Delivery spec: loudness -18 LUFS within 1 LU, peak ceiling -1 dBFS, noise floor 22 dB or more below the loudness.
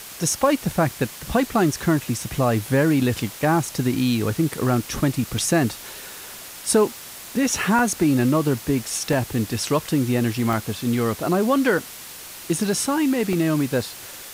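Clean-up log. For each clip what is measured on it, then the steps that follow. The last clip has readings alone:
dropouts 5; longest dropout 1.5 ms; noise floor -39 dBFS; noise floor target -44 dBFS; loudness -22.0 LUFS; peak level -7.0 dBFS; loudness target -18.0 LUFS
-> interpolate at 5.38/7.79/9.13/10.53/13.33 s, 1.5 ms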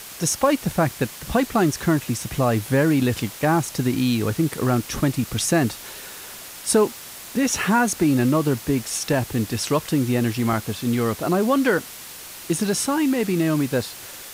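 dropouts 0; noise floor -39 dBFS; noise floor target -44 dBFS
-> noise reduction 6 dB, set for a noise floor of -39 dBFS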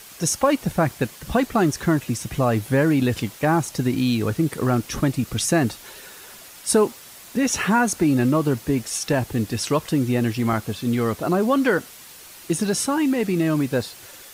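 noise floor -43 dBFS; noise floor target -44 dBFS
-> noise reduction 6 dB, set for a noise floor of -43 dBFS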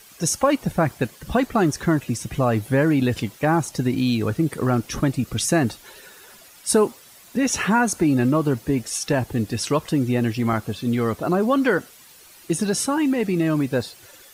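noise floor -48 dBFS; loudness -22.0 LUFS; peak level -7.0 dBFS; loudness target -18.0 LUFS
-> trim +4 dB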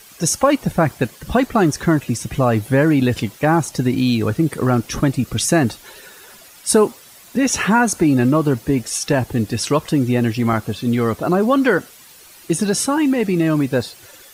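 loudness -18.0 LUFS; peak level -3.0 dBFS; noise floor -44 dBFS

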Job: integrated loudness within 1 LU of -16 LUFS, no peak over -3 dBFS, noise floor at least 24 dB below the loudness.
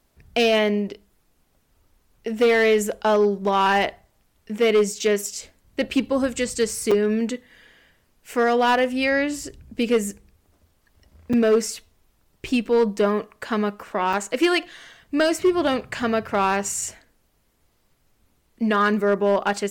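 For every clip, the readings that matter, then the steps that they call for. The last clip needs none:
clipped samples 0.8%; clipping level -12.5 dBFS; dropouts 3; longest dropout 5.0 ms; loudness -22.0 LUFS; peak level -12.5 dBFS; loudness target -16.0 LUFS
-> clip repair -12.5 dBFS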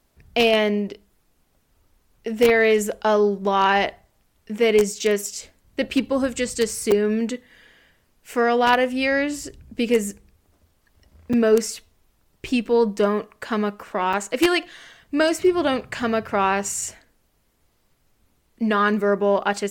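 clipped samples 0.0%; dropouts 3; longest dropout 5.0 ms
-> interpolate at 6.91/11.33/14.13 s, 5 ms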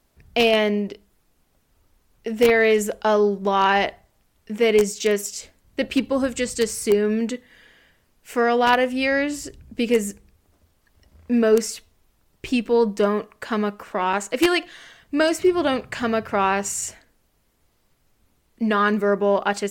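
dropouts 0; loudness -21.5 LUFS; peak level -3.5 dBFS; loudness target -16.0 LUFS
-> trim +5.5 dB; peak limiter -3 dBFS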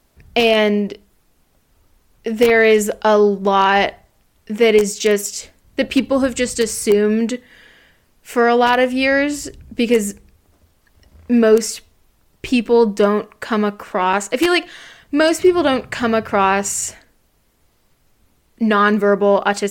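loudness -16.5 LUFS; peak level -3.0 dBFS; noise floor -60 dBFS

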